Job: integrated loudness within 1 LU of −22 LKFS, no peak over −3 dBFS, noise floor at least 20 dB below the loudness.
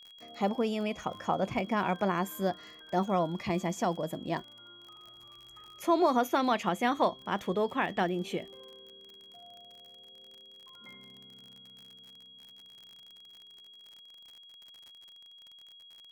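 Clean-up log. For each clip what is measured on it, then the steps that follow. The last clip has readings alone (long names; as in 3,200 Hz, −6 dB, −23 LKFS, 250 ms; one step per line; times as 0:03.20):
crackle rate 47 per second; interfering tone 3,300 Hz; level of the tone −51 dBFS; integrated loudness −31.0 LKFS; sample peak −14.5 dBFS; target loudness −22.0 LKFS
→ click removal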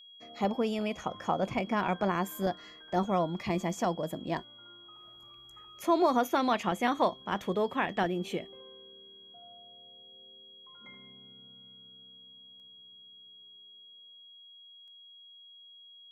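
crackle rate 0.25 per second; interfering tone 3,300 Hz; level of the tone −51 dBFS
→ notch filter 3,300 Hz, Q 30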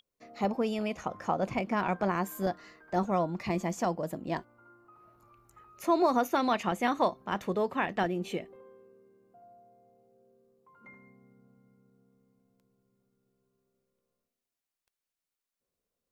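interfering tone none found; integrated loudness −31.0 LKFS; sample peak −14.5 dBFS; target loudness −22.0 LKFS
→ level +9 dB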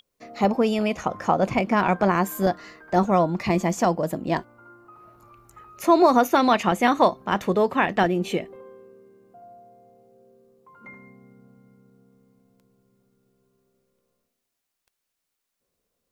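integrated loudness −22.0 LKFS; sample peak −5.5 dBFS; background noise floor −81 dBFS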